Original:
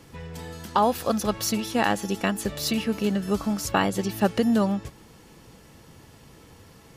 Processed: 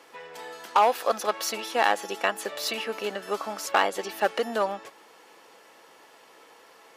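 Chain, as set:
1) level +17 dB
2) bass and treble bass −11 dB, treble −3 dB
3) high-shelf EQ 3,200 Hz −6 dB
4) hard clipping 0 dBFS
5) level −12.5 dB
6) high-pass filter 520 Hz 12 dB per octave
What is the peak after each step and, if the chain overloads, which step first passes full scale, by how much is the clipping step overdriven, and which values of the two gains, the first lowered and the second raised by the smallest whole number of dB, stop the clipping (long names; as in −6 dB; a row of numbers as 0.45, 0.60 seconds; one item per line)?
+8.5, +8.0, +7.5, 0.0, −12.5, −8.5 dBFS
step 1, 7.5 dB
step 1 +9 dB, step 5 −4.5 dB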